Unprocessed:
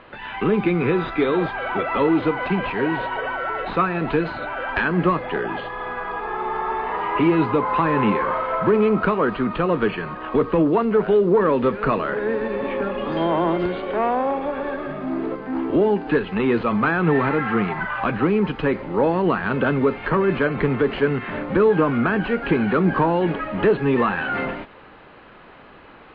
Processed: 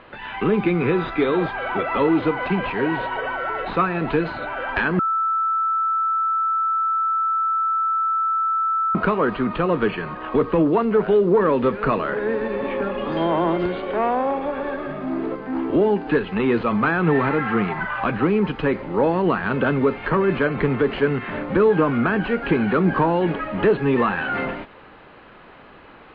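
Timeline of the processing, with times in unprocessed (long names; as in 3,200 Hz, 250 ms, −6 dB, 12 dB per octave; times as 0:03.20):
0:04.99–0:08.95: beep over 1,320 Hz −18 dBFS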